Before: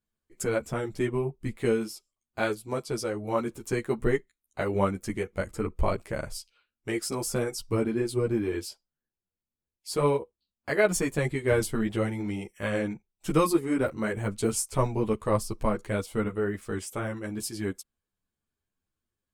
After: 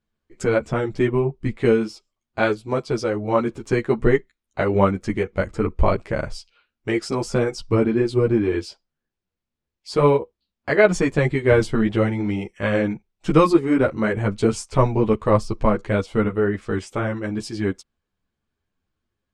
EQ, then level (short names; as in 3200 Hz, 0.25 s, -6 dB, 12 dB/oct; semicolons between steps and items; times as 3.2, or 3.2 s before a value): air absorption 120 m; +8.5 dB